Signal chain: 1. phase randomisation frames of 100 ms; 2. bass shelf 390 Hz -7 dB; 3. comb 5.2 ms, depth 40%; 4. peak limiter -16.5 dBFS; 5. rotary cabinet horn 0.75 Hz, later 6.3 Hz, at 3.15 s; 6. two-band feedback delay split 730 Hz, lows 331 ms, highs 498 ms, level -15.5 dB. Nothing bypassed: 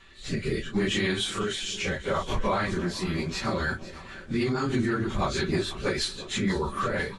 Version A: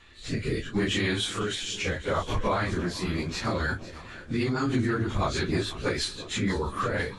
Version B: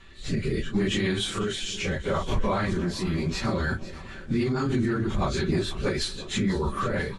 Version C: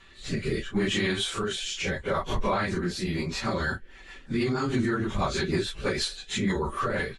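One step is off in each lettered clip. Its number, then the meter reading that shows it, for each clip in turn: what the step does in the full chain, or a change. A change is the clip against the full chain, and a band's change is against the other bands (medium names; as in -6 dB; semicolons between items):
3, 125 Hz band +2.0 dB; 2, 125 Hz band +4.0 dB; 6, echo-to-direct -14.0 dB to none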